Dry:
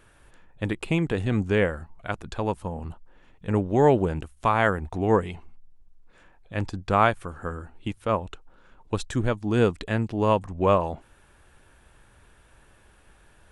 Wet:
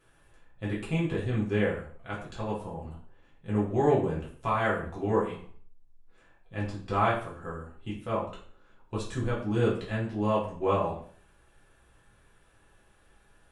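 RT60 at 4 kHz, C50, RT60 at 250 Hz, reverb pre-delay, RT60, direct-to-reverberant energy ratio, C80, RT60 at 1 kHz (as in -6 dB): 0.45 s, 5.5 dB, 0.50 s, 3 ms, 0.50 s, -6.0 dB, 10.5 dB, 0.50 s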